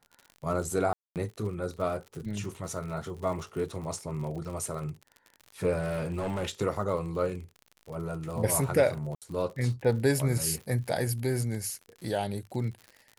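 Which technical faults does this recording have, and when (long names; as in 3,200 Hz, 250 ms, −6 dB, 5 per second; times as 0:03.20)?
surface crackle 64 per second −38 dBFS
0:00.93–0:01.16: drop-out 228 ms
0:05.80–0:06.50: clipping −27 dBFS
0:09.15–0:09.22: drop-out 67 ms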